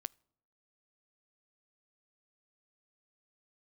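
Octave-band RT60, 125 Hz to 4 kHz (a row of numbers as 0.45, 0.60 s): 0.70, 0.75, 0.75, 0.70, 0.50, 0.45 s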